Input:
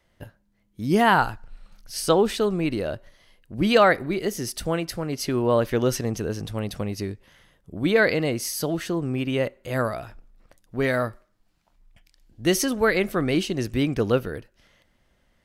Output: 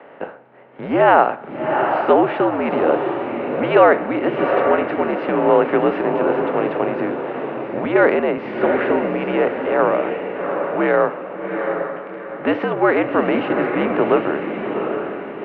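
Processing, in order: per-bin compression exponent 0.6; mistuned SSB -76 Hz 280–2800 Hz; bell 670 Hz +9 dB 1.5 oct; on a send: diffused feedback echo 0.756 s, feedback 41%, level -5 dB; 7.85–8.38 on the sum: three-band expander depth 40%; gain -2.5 dB

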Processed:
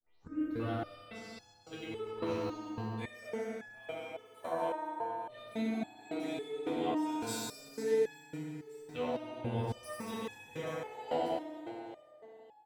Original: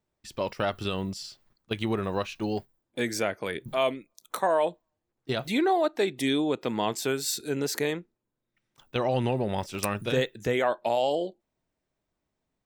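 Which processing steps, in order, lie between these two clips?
tape start at the beginning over 0.67 s; level quantiser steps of 15 dB; on a send: reverse bouncing-ball echo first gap 90 ms, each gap 1.6×, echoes 5; on the sum: FDN reverb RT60 3.4 s, high-frequency decay 0.5×, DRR -8 dB; stepped resonator 3.6 Hz 82–840 Hz; gain -4.5 dB

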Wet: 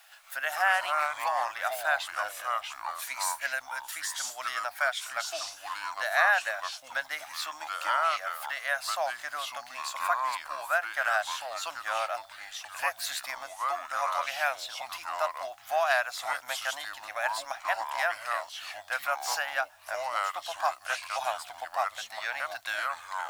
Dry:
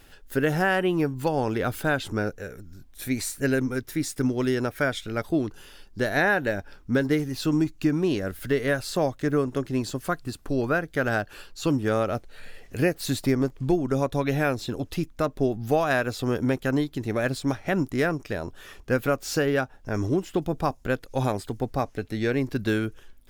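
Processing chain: echoes that change speed 0.118 s, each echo -4 st, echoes 2; requantised 10-bit, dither none; elliptic high-pass 670 Hz, stop band 40 dB

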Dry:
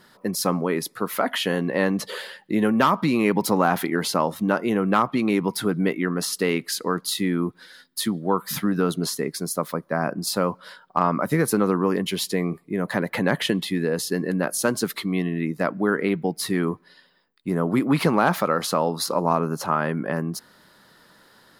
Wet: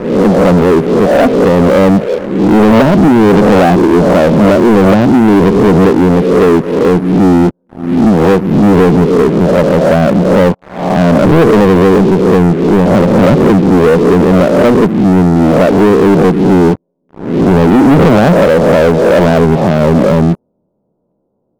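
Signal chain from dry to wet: spectral swells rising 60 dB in 0.75 s; inverse Chebyshev low-pass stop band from 1700 Hz, stop band 50 dB; low shelf 190 Hz -2 dB; sample leveller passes 5; gain +5.5 dB

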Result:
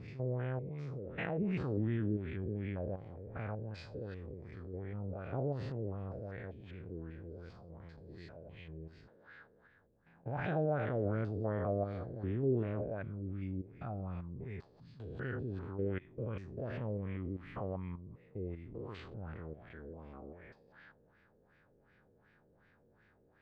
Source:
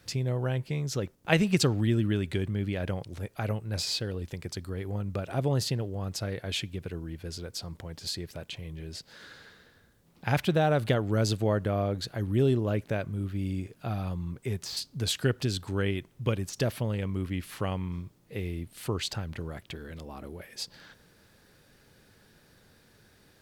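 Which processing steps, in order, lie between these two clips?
stepped spectrum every 0.2 s; LFO low-pass sine 2.7 Hz 460–2200 Hz; gain -8 dB

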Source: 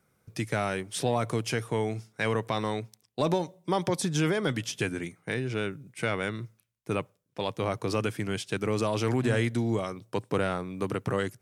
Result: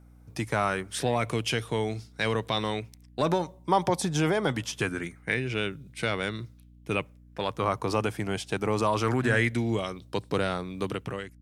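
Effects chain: ending faded out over 0.57 s; hum 60 Hz, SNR 23 dB; LFO bell 0.24 Hz 760–4200 Hz +9 dB

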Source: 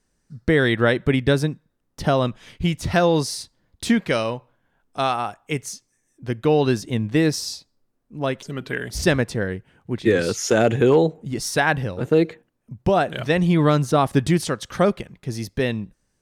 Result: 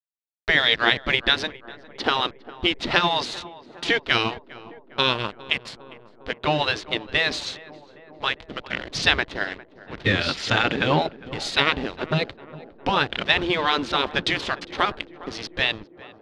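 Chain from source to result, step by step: spectral gate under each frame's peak -10 dB weak; in parallel at -3 dB: compressor, threshold -27 dBFS, peak gain reduction 8.5 dB; on the sum: backlash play -28.5 dBFS; synth low-pass 3800 Hz, resonance Q 2.2; tape echo 0.406 s, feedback 86%, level -16 dB, low-pass 1100 Hz; gain +2 dB

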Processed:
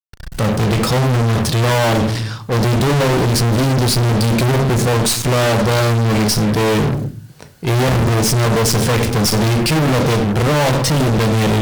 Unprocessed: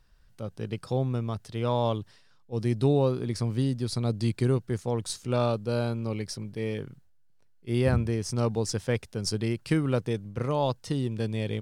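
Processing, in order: shoebox room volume 230 m³, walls furnished, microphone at 0.62 m; fuzz box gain 48 dB, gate -50 dBFS

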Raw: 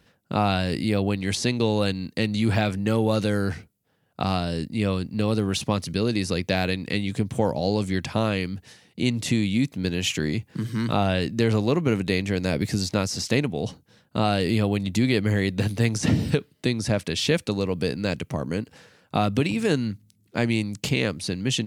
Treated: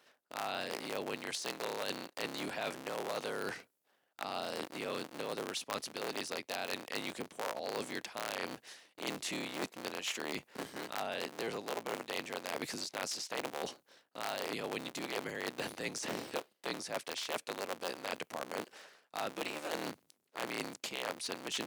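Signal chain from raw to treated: cycle switcher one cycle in 3, inverted; HPF 450 Hz 12 dB/oct; reverse; compressor, threshold -32 dBFS, peak gain reduction 14.5 dB; reverse; gain -3 dB

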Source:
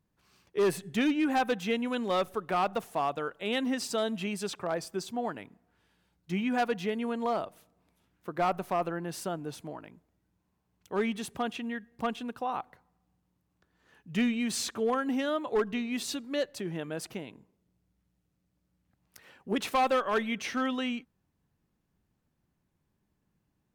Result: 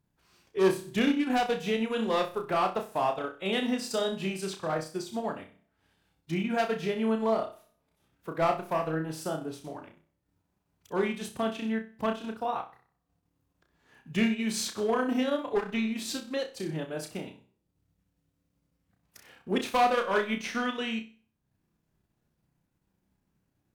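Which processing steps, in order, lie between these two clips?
formant-preserving pitch shift -1 st; flutter echo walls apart 5.4 m, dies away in 0.42 s; transient shaper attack +1 dB, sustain -6 dB

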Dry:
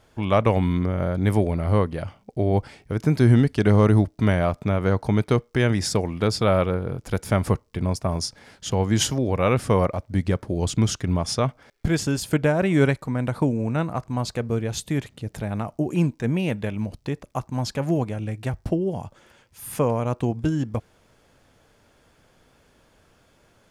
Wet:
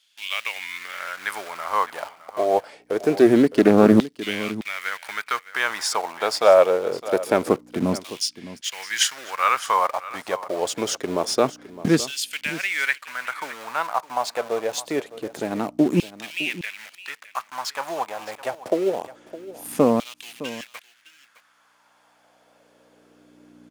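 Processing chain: in parallel at -7.5 dB: bit-crush 5-bit; on the sum: hum 60 Hz, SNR 24 dB; LFO high-pass saw down 0.25 Hz 220–3400 Hz; echo 0.611 s -16 dB; Doppler distortion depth 0.25 ms; gain -1 dB

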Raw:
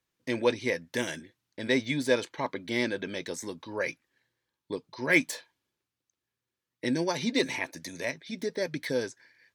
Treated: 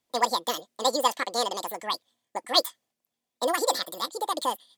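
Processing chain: speed mistake 7.5 ips tape played at 15 ips; gain +3 dB

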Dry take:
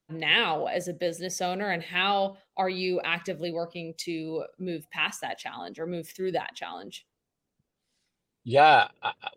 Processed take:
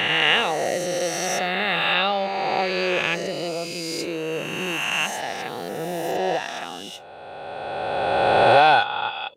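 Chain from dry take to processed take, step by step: spectral swells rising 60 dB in 2.99 s

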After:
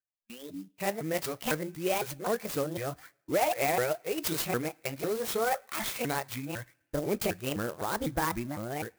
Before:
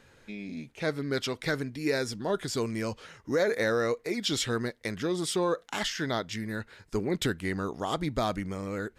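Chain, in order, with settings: repeated pitch sweeps +8.5 st, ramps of 0.252 s; spectral noise reduction 20 dB; gate -48 dBFS, range -31 dB; on a send at -22 dB: high shelf 5100 Hz +9 dB + reverb RT60 1.0 s, pre-delay 3 ms; on the sum: clock jitter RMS 0.049 ms

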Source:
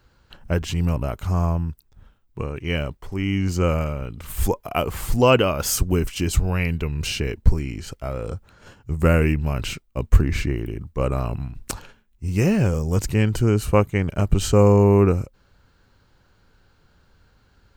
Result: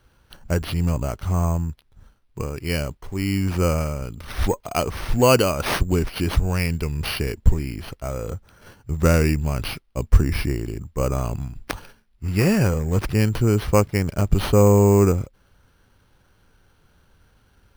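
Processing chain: 12.26–12.74 bell 1600 Hz +5 dB 2.2 oct; sample-and-hold 6×

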